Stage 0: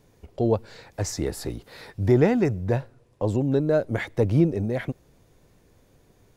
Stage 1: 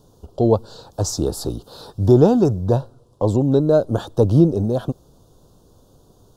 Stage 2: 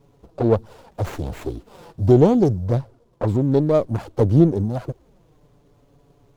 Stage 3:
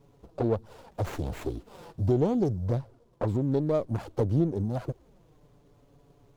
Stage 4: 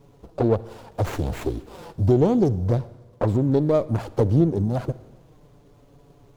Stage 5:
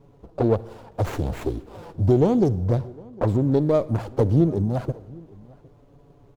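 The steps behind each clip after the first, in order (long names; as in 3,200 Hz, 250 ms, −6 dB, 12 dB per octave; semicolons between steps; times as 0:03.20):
Chebyshev band-stop filter 1,200–3,600 Hz, order 2; level +7 dB
flanger swept by the level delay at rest 7.3 ms, full sweep at −10.5 dBFS; windowed peak hold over 9 samples
downward compressor 2 to 1, threshold −23 dBFS, peak gain reduction 8.5 dB; level −3.5 dB
convolution reverb RT60 1.2 s, pre-delay 48 ms, DRR 18 dB; level +6.5 dB
single-tap delay 757 ms −23.5 dB; one half of a high-frequency compander decoder only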